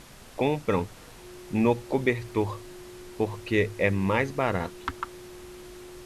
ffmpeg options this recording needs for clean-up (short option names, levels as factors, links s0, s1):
-af "bandreject=f=360:w=30,afftdn=nr=25:nf=-47"